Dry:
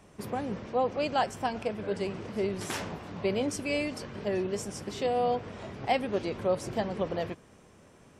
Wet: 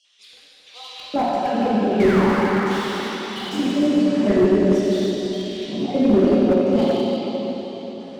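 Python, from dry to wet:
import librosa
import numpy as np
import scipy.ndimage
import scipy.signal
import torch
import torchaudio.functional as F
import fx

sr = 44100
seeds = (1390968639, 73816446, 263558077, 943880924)

p1 = fx.spec_dropout(x, sr, seeds[0], share_pct=32)
p2 = fx.quant_float(p1, sr, bits=2)
p3 = p1 + F.gain(torch.from_numpy(p2), -4.0).numpy()
p4 = fx.spec_paint(p3, sr, seeds[1], shape='fall', start_s=1.84, length_s=0.76, low_hz=200.0, high_hz=4500.0, level_db=-29.0)
p5 = fx.filter_lfo_highpass(p4, sr, shape='square', hz=0.44, low_hz=230.0, high_hz=3500.0, q=3.1)
p6 = fx.rotary(p5, sr, hz=0.85)
p7 = fx.filter_lfo_lowpass(p6, sr, shape='square', hz=1.5, low_hz=800.0, high_hz=5000.0, q=0.76)
p8 = fx.rev_plate(p7, sr, seeds[2], rt60_s=4.5, hf_ratio=0.95, predelay_ms=0, drr_db=-8.0)
p9 = fx.slew_limit(p8, sr, full_power_hz=76.0)
y = F.gain(torch.from_numpy(p9), 3.0).numpy()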